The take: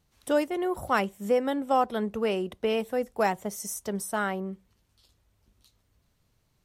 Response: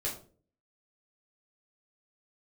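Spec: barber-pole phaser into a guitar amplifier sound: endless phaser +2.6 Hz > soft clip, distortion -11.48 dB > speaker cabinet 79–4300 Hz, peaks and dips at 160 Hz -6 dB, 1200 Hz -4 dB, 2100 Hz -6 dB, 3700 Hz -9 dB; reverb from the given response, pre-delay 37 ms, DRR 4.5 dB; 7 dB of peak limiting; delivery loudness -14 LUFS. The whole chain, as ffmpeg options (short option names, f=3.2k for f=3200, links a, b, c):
-filter_complex "[0:a]alimiter=limit=-18.5dB:level=0:latency=1,asplit=2[a][b];[1:a]atrim=start_sample=2205,adelay=37[c];[b][c]afir=irnorm=-1:irlink=0,volume=-8dB[d];[a][d]amix=inputs=2:normalize=0,asplit=2[e][f];[f]afreqshift=2.6[g];[e][g]amix=inputs=2:normalize=1,asoftclip=threshold=-25dB,highpass=79,equalizer=f=160:t=q:w=4:g=-6,equalizer=f=1.2k:t=q:w=4:g=-4,equalizer=f=2.1k:t=q:w=4:g=-6,equalizer=f=3.7k:t=q:w=4:g=-9,lowpass=f=4.3k:w=0.5412,lowpass=f=4.3k:w=1.3066,volume=20.5dB"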